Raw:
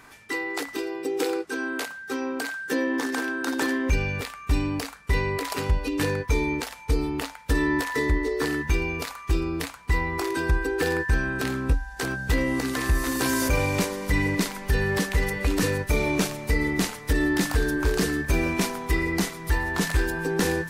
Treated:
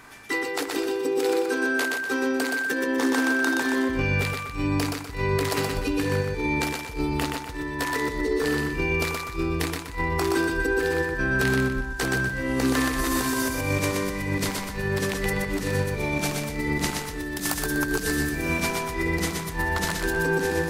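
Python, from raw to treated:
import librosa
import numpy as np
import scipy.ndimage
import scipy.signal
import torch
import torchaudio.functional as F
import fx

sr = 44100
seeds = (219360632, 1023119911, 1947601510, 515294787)

y = fx.high_shelf(x, sr, hz=5700.0, db=10.5, at=(17.23, 18.57))
y = fx.over_compress(y, sr, threshold_db=-26.0, ratio=-0.5)
y = fx.echo_feedback(y, sr, ms=123, feedback_pct=35, wet_db=-3.5)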